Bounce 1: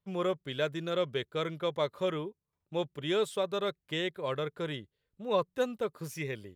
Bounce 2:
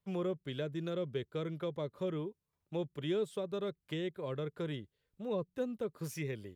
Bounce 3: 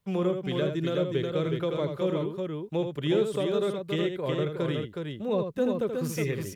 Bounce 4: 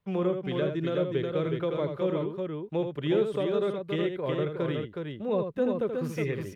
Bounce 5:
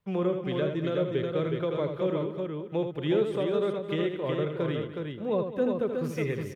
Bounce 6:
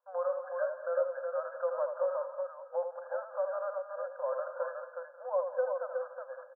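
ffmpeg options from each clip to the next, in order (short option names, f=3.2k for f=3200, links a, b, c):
-filter_complex "[0:a]acrossover=split=420[a][b];[b]acompressor=threshold=-43dB:ratio=10[c];[a][c]amix=inputs=2:normalize=0"
-af "aecho=1:1:80|367:0.447|0.596,volume=8dB"
-af "bass=f=250:g=-2,treble=f=4k:g=-12,bandreject=f=7.4k:w=22"
-af "aecho=1:1:210|420|630:0.211|0.0761|0.0274"
-filter_complex "[0:a]asplit=2[a][b];[b]adelay=170,highpass=300,lowpass=3.4k,asoftclip=type=hard:threshold=-24.5dB,volume=-16dB[c];[a][c]amix=inputs=2:normalize=0,afftfilt=real='re*between(b*sr/4096,500,1700)':imag='im*between(b*sr/4096,500,1700)':win_size=4096:overlap=0.75"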